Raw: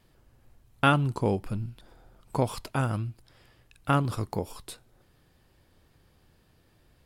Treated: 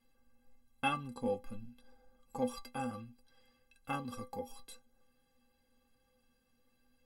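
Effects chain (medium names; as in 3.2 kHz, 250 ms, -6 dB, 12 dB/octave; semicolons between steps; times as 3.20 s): inharmonic resonator 240 Hz, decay 0.22 s, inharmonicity 0.03; trim +2.5 dB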